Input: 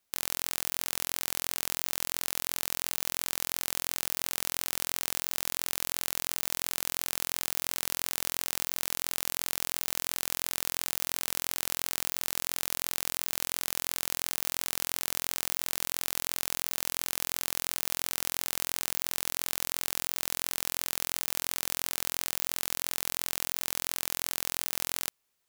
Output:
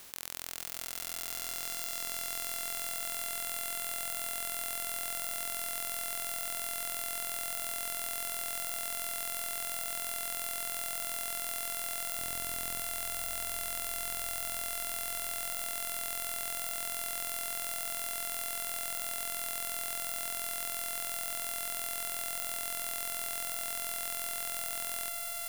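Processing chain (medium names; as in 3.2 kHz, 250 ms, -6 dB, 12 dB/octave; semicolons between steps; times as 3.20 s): spectral levelling over time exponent 0.2; 12.17–12.81 s: bass shelf 280 Hz +11.5 dB; echo with a slow build-up 118 ms, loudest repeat 8, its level -8 dB; trim -9 dB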